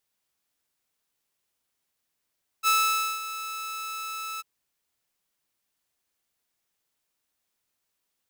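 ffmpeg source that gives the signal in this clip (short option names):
-f lavfi -i "aevalsrc='0.158*(2*mod(1310*t,1)-1)':d=1.794:s=44100,afade=t=in:d=0.044,afade=t=out:st=0.044:d=0.52:silence=0.2,afade=t=out:st=1.77:d=0.024"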